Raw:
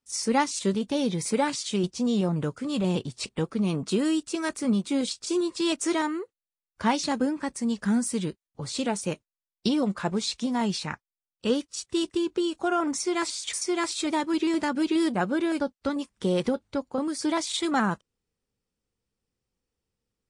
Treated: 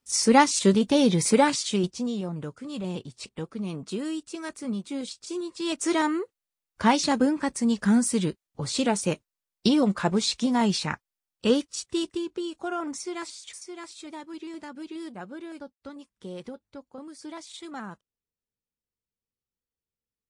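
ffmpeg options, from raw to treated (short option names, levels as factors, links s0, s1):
-af "volume=6.31,afade=t=out:st=1.32:d=0.85:silence=0.237137,afade=t=in:st=5.57:d=0.52:silence=0.316228,afade=t=out:st=11.47:d=0.81:silence=0.354813,afade=t=out:st=12.93:d=0.76:silence=0.398107"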